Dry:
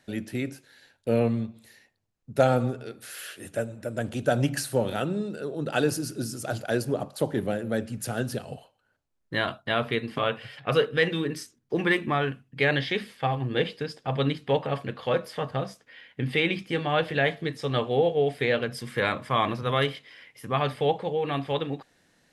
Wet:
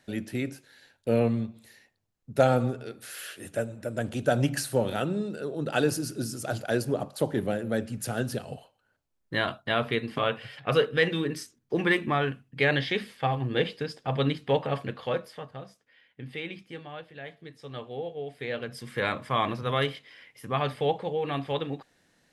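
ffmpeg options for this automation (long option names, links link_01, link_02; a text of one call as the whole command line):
ffmpeg -i in.wav -af "volume=17.5dB,afade=type=out:start_time=14.86:duration=0.62:silence=0.266073,afade=type=out:start_time=16.67:duration=0.41:silence=0.398107,afade=type=in:start_time=17.08:duration=0.72:silence=0.421697,afade=type=in:start_time=18.31:duration=0.8:silence=0.298538" out.wav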